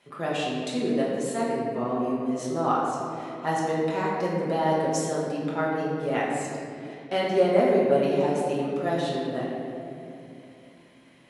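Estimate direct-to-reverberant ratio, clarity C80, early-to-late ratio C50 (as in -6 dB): -6.5 dB, 1.0 dB, 0.0 dB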